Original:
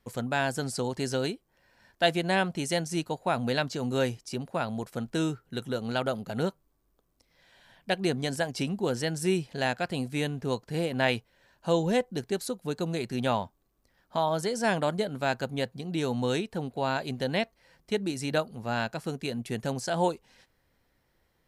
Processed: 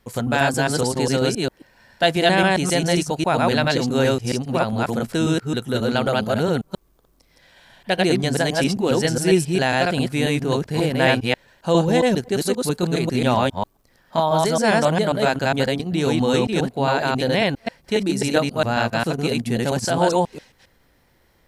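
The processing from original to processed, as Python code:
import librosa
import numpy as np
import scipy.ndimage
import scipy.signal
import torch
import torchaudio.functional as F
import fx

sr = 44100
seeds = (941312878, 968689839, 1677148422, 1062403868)

p1 = fx.reverse_delay(x, sr, ms=135, wet_db=0.0)
p2 = fx.level_steps(p1, sr, step_db=18)
p3 = p1 + (p2 * 10.0 ** (-2.0 / 20.0))
y = p3 * 10.0 ** (5.0 / 20.0)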